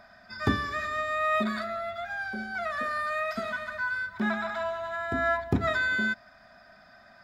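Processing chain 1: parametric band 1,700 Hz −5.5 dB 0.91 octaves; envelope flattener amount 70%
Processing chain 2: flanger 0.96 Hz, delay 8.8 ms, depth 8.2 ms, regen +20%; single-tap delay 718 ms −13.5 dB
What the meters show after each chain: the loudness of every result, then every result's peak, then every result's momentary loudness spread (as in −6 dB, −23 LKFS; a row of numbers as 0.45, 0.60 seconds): −24.5, −33.0 LKFS; −11.0, −16.0 dBFS; 7, 13 LU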